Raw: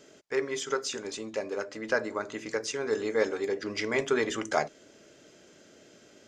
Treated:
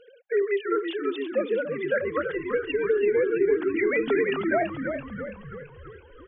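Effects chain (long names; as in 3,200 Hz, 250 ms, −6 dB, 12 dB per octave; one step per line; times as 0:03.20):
three sine waves on the formant tracks
brickwall limiter −25 dBFS, peak gain reduction 10 dB
echo with shifted repeats 333 ms, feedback 58%, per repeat −63 Hz, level −7 dB
level +8.5 dB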